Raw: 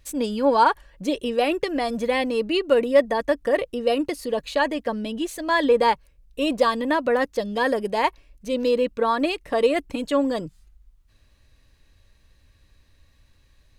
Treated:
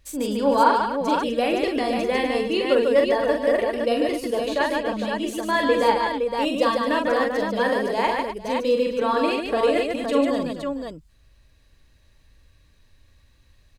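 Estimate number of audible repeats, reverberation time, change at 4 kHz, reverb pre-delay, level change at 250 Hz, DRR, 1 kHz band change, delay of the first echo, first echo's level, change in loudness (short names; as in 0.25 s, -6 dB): 5, none, +1.0 dB, none, +1.0 dB, none, +1.0 dB, 43 ms, -4.5 dB, +0.5 dB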